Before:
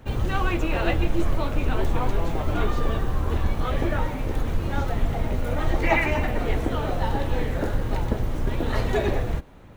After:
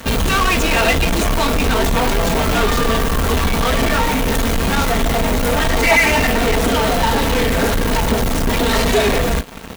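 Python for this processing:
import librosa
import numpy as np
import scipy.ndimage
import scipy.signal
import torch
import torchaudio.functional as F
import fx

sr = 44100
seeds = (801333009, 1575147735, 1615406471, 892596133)

p1 = fx.highpass(x, sr, hz=60.0, slope=6)
p2 = fx.high_shelf(p1, sr, hz=2700.0, db=10.5)
p3 = p2 + 0.68 * np.pad(p2, (int(4.4 * sr / 1000.0), 0))[:len(p2)]
p4 = fx.fuzz(p3, sr, gain_db=39.0, gate_db=-46.0)
y = p3 + (p4 * 10.0 ** (-4.5 / 20.0))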